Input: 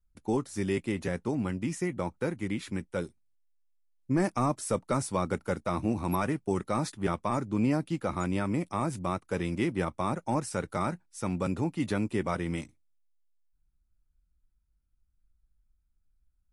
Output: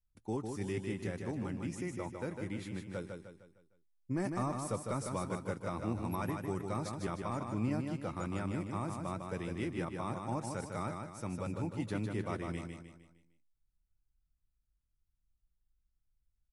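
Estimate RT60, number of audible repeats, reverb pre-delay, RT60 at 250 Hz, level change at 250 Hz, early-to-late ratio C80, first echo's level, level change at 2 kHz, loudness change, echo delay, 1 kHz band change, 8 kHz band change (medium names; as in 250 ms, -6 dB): no reverb, 5, no reverb, no reverb, -7.5 dB, no reverb, -5.0 dB, -7.5 dB, -7.0 dB, 153 ms, -7.5 dB, -7.5 dB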